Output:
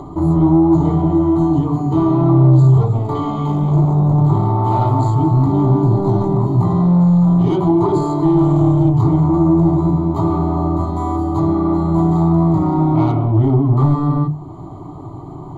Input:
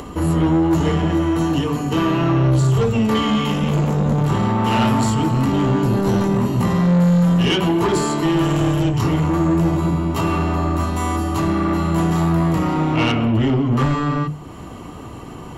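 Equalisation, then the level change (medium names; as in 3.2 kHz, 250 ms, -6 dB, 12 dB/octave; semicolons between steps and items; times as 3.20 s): boxcar filter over 16 samples; peaking EQ 87 Hz +4.5 dB 0.88 oct; static phaser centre 330 Hz, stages 8; +5.0 dB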